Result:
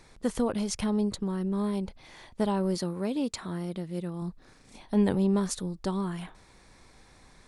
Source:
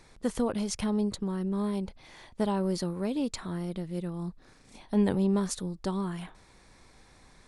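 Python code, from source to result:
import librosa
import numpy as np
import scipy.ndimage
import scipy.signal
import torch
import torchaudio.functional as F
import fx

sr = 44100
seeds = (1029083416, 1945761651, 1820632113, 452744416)

y = fx.highpass(x, sr, hz=97.0, slope=6, at=(2.75, 4.22))
y = y * 10.0 ** (1.0 / 20.0)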